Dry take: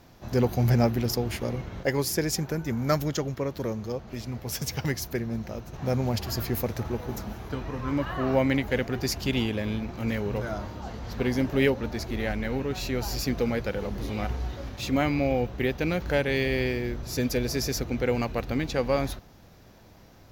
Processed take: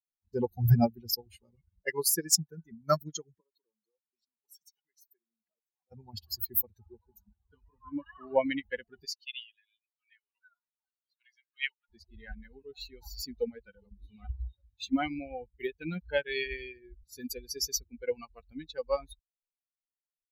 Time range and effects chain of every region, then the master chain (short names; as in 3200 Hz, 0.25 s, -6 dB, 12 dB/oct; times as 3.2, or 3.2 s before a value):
3.4–5.92 compressor, threshold -34 dBFS + HPF 280 Hz
9.05–11.9 HPF 1400 Hz + high shelf 5700 Hz -6 dB
whole clip: per-bin expansion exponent 3; high shelf 3600 Hz +10.5 dB; upward expander 1.5:1, over -46 dBFS; gain +4.5 dB